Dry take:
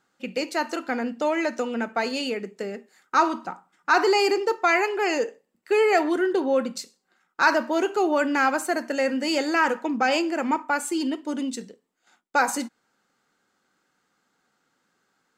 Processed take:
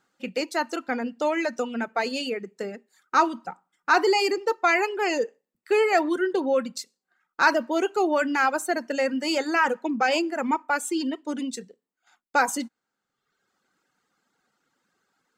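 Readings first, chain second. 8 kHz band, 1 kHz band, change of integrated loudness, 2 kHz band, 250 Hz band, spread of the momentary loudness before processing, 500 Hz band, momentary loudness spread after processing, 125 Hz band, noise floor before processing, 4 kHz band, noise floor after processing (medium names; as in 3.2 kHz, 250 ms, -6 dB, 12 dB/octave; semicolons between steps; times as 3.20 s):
-0.5 dB, -0.5 dB, -1.0 dB, -0.5 dB, -1.5 dB, 13 LU, -1.0 dB, 12 LU, no reading, -73 dBFS, -0.5 dB, -84 dBFS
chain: reverb removal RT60 0.94 s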